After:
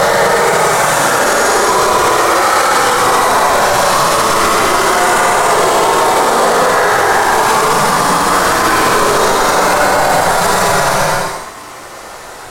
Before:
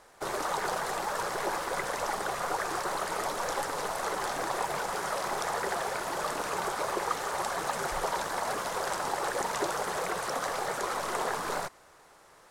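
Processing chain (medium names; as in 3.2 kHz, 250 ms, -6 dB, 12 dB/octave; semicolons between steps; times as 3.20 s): Paulstretch 11×, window 0.10 s, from 10.67 s; loudness maximiser +28.5 dB; trim -1 dB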